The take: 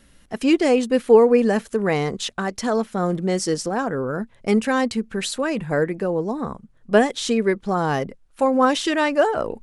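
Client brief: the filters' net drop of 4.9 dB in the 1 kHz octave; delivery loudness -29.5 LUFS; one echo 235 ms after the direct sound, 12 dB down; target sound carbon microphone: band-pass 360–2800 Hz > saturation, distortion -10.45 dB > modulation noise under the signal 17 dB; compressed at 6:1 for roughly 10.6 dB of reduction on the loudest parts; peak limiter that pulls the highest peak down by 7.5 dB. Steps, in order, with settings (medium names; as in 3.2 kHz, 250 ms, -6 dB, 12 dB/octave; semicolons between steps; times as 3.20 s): peaking EQ 1 kHz -6.5 dB; compression 6:1, threshold -20 dBFS; peak limiter -17.5 dBFS; band-pass 360–2800 Hz; delay 235 ms -12 dB; saturation -29 dBFS; modulation noise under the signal 17 dB; trim +5 dB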